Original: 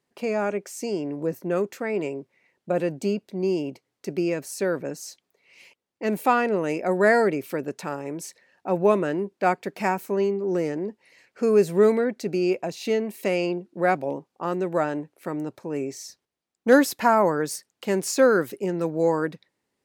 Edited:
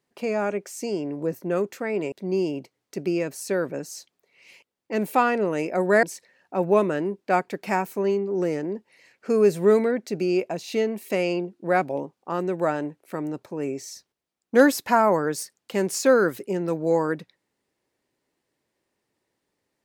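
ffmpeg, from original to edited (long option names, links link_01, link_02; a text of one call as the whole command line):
ffmpeg -i in.wav -filter_complex "[0:a]asplit=3[link_01][link_02][link_03];[link_01]atrim=end=2.122[link_04];[link_02]atrim=start=3.228:end=7.142[link_05];[link_03]atrim=start=8.158[link_06];[link_04][link_05]acrossfade=duration=0.004:curve1=hsin:curve2=hsin[link_07];[link_07][link_06]acrossfade=duration=0.004:curve1=hsin:curve2=hsin" out.wav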